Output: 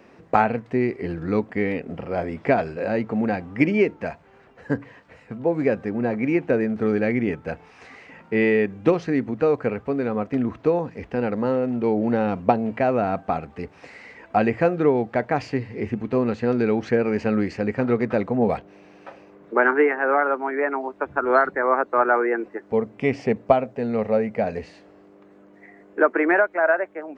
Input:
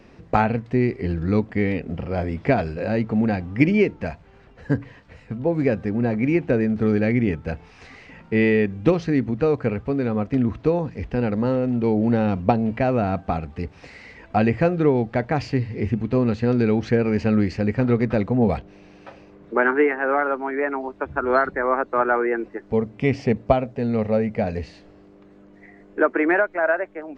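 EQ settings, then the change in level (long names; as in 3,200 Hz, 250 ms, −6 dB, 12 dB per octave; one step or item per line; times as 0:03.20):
high-pass filter 390 Hz 6 dB per octave
parametric band 4,300 Hz −7 dB 1.7 octaves
+3.0 dB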